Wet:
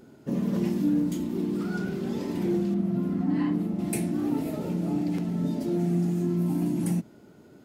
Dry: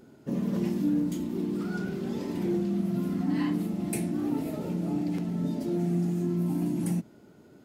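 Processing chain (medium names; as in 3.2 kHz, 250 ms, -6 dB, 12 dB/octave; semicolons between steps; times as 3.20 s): 2.74–3.79 s: treble shelf 2.6 kHz -11.5 dB; trim +2 dB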